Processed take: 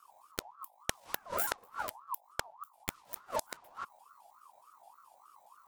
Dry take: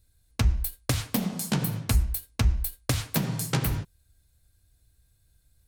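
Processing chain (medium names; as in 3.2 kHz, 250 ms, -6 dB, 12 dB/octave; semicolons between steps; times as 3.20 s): pitch shift switched off and on +11.5 st, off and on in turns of 105 ms; inverted gate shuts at -19 dBFS, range -35 dB; hum 50 Hz, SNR 23 dB; ring modulator with a swept carrier 1 kHz, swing 25%, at 3.4 Hz; trim +5 dB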